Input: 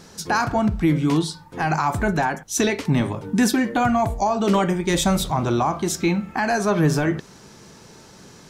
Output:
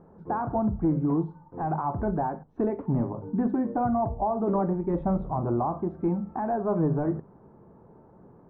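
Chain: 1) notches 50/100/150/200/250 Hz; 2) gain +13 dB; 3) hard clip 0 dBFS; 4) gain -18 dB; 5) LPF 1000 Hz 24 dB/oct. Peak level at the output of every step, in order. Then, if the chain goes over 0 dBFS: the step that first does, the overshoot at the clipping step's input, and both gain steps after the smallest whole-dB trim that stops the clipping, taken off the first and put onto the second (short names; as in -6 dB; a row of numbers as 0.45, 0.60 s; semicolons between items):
-8.0, +5.0, 0.0, -18.0, -16.5 dBFS; step 2, 5.0 dB; step 2 +8 dB, step 4 -13 dB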